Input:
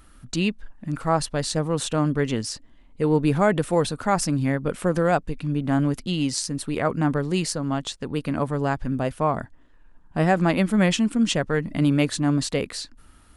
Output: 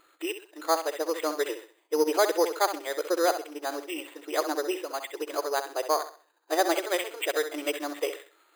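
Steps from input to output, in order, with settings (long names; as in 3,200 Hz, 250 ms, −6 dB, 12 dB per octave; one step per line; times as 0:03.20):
gain on one half-wave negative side −3 dB
phase-vocoder stretch with locked phases 0.64×
linear-phase brick-wall band-pass 310–3,700 Hz
on a send: flutter between parallel walls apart 11.2 metres, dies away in 0.39 s
on the sum: bad sample-rate conversion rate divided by 8×, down none, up hold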